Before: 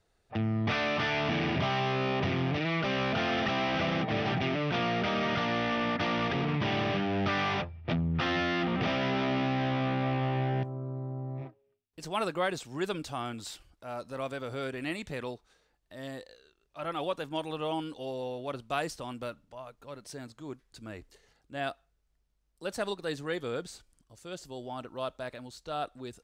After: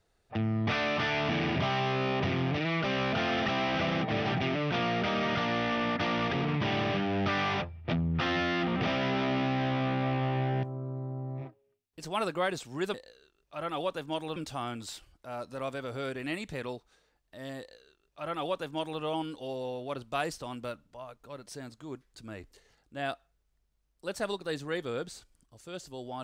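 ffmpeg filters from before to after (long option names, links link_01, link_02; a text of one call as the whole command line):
ffmpeg -i in.wav -filter_complex "[0:a]asplit=3[link_01][link_02][link_03];[link_01]atrim=end=12.942[link_04];[link_02]atrim=start=16.168:end=17.592[link_05];[link_03]atrim=start=12.938[link_06];[link_04][link_05]acrossfade=duration=0.004:curve1=hsin:curve2=hsin[link_07];[link_07][link_06]acrossfade=duration=0.004:curve1=hsin:curve2=hsin" out.wav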